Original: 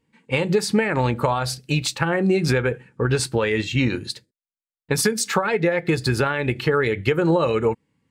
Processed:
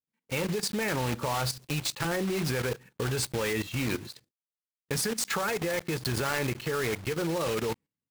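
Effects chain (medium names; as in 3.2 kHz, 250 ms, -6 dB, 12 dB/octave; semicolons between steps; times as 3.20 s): block-companded coder 3-bit; gate with hold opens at -36 dBFS; level held to a coarse grid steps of 13 dB; trim -3 dB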